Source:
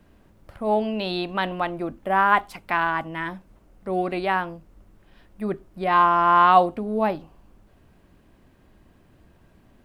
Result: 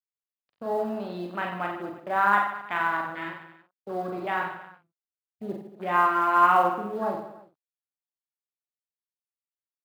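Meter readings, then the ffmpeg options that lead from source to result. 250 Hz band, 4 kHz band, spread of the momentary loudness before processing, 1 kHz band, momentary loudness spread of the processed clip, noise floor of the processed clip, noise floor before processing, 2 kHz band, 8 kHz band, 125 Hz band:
-6.5 dB, -9.5 dB, 15 LU, -4.0 dB, 17 LU, under -85 dBFS, -57 dBFS, -2.0 dB, n/a, -7.5 dB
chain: -filter_complex "[0:a]acrusher=bits=4:mix=0:aa=0.5,highshelf=f=2.9k:g=3.5,aresample=11025,aresample=44100,adynamicequalizer=threshold=0.0158:dfrequency=1400:dqfactor=5.8:tfrequency=1400:tqfactor=5.8:attack=5:release=100:ratio=0.375:range=3:mode=boostabove:tftype=bell,afwtdn=0.0355,asplit=2[a][b];[b]aecho=0:1:40|90|152.5|230.6|328.3:0.631|0.398|0.251|0.158|0.1[c];[a][c]amix=inputs=2:normalize=0,acrusher=bits=9:mode=log:mix=0:aa=0.000001,highpass=130,asplit=2[d][e];[e]adelay=49,volume=-8.5dB[f];[d][f]amix=inputs=2:normalize=0,volume=-8dB"

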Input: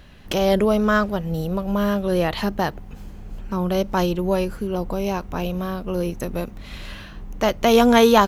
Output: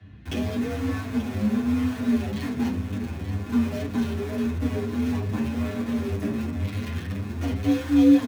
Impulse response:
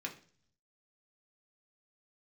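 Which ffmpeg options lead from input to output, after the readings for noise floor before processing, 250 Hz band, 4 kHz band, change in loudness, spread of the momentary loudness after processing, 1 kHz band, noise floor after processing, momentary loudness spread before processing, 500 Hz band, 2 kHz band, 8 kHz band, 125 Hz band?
-39 dBFS, 0.0 dB, -11.5 dB, -5.0 dB, 7 LU, -16.0 dB, -35 dBFS, 20 LU, -13.0 dB, -9.5 dB, -9.0 dB, 0.0 dB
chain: -filter_complex "[0:a]aemphasis=mode=reproduction:type=bsi,acrossover=split=320|3200[a][b][c];[b]acompressor=threshold=-31dB:ratio=12[d];[a][d][c]amix=inputs=3:normalize=0,alimiter=limit=-12.5dB:level=0:latency=1:release=209,asplit=2[e][f];[f]acrusher=bits=3:mix=0:aa=0.000001,volume=-5dB[g];[e][g]amix=inputs=2:normalize=0,afreqshift=49,aecho=1:1:883:0.282[h];[1:a]atrim=start_sample=2205[i];[h][i]afir=irnorm=-1:irlink=0,asplit=2[j][k];[k]adelay=7.6,afreqshift=2.1[l];[j][l]amix=inputs=2:normalize=1,volume=-4dB"

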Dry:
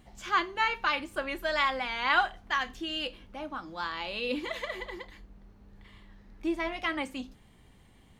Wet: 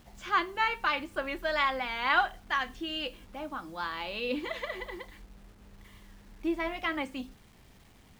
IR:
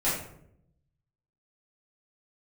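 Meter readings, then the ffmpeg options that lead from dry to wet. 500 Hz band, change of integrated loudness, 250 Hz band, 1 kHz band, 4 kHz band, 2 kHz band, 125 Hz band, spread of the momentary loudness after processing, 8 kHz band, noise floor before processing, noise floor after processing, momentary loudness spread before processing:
0.0 dB, -0.5 dB, 0.0 dB, 0.0 dB, -2.0 dB, -0.5 dB, 0.0 dB, 13 LU, -3.5 dB, -59 dBFS, -58 dBFS, 13 LU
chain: -af "highshelf=f=7.2k:g=-11.5,acrusher=bits=9:mix=0:aa=0.000001"

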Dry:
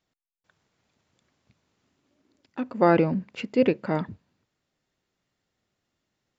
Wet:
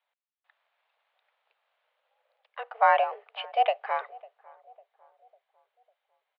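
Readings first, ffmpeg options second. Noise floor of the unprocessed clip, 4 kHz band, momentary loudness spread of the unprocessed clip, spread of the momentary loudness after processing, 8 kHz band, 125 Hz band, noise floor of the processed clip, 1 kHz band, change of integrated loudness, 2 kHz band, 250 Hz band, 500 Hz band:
-82 dBFS, +3.5 dB, 16 LU, 20 LU, n/a, under -40 dB, under -85 dBFS, +6.0 dB, -1.5 dB, +2.5 dB, under -40 dB, -6.0 dB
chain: -filter_complex "[0:a]asplit=2[a][b];[b]adelay=550,lowpass=f=870:p=1,volume=-22dB,asplit=2[c][d];[d]adelay=550,lowpass=f=870:p=1,volume=0.51,asplit=2[e][f];[f]adelay=550,lowpass=f=870:p=1,volume=0.51,asplit=2[g][h];[h]adelay=550,lowpass=f=870:p=1,volume=0.51[i];[a][c][e][g][i]amix=inputs=5:normalize=0,highpass=f=380:t=q:w=0.5412,highpass=f=380:t=q:w=1.307,lowpass=f=3.4k:t=q:w=0.5176,lowpass=f=3.4k:t=q:w=0.7071,lowpass=f=3.4k:t=q:w=1.932,afreqshift=230"

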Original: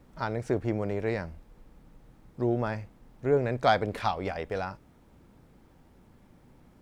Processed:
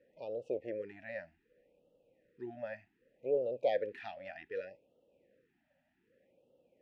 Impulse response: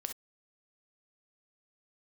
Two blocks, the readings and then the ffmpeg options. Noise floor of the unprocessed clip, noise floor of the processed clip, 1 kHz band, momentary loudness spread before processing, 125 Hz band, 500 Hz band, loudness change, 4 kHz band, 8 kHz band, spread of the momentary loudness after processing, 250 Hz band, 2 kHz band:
-59 dBFS, -78 dBFS, -16.5 dB, 11 LU, -26.0 dB, -6.5 dB, -9.0 dB, -15.0 dB, n/a, 15 LU, -17.0 dB, -11.5 dB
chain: -filter_complex "[0:a]asplit=3[a][b][c];[a]bandpass=f=530:t=q:w=8,volume=0dB[d];[b]bandpass=f=1.84k:t=q:w=8,volume=-6dB[e];[c]bandpass=f=2.48k:t=q:w=8,volume=-9dB[f];[d][e][f]amix=inputs=3:normalize=0,afftfilt=real='re*(1-between(b*sr/1024,390*pow(1900/390,0.5+0.5*sin(2*PI*0.65*pts/sr))/1.41,390*pow(1900/390,0.5+0.5*sin(2*PI*0.65*pts/sr))*1.41))':imag='im*(1-between(b*sr/1024,390*pow(1900/390,0.5+0.5*sin(2*PI*0.65*pts/sr))/1.41,390*pow(1900/390,0.5+0.5*sin(2*PI*0.65*pts/sr))*1.41))':win_size=1024:overlap=0.75,volume=2.5dB"

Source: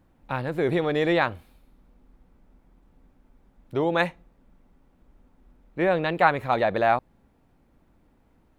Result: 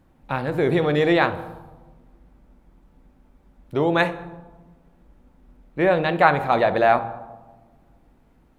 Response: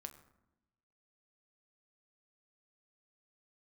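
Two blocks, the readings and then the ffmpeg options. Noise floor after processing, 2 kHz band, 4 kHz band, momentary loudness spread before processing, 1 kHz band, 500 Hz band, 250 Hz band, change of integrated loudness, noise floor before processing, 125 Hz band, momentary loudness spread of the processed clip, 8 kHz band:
-58 dBFS, +3.5 dB, +3.5 dB, 9 LU, +4.0 dB, +4.0 dB, +4.5 dB, +4.0 dB, -63 dBFS, +4.5 dB, 17 LU, n/a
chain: -filter_complex "[0:a]asplit=2[a][b];[1:a]atrim=start_sample=2205,asetrate=29547,aresample=44100[c];[b][c]afir=irnorm=-1:irlink=0,volume=9.5dB[d];[a][d]amix=inputs=2:normalize=0,volume=-6dB"

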